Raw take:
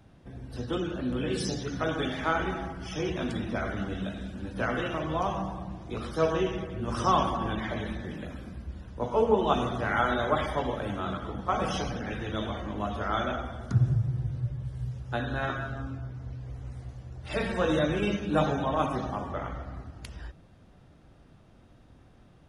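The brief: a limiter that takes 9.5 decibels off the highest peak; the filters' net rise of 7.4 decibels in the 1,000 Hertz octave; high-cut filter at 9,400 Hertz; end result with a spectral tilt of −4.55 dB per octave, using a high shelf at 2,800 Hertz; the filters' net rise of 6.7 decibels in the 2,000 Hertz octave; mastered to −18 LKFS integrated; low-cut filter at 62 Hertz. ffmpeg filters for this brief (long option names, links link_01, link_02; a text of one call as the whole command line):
ffmpeg -i in.wav -af "highpass=62,lowpass=9400,equalizer=frequency=1000:width_type=o:gain=8,equalizer=frequency=2000:width_type=o:gain=7,highshelf=frequency=2800:gain=-3.5,volume=10dB,alimiter=limit=-4.5dB:level=0:latency=1" out.wav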